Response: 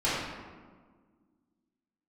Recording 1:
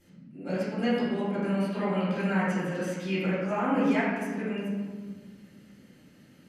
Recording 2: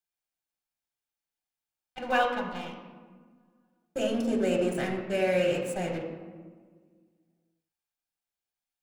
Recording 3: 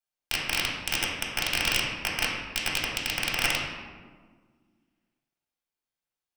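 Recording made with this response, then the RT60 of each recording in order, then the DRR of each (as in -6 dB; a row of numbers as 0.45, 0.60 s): 1; 1.6, 1.6, 1.6 s; -11.0, 2.0, -3.5 dB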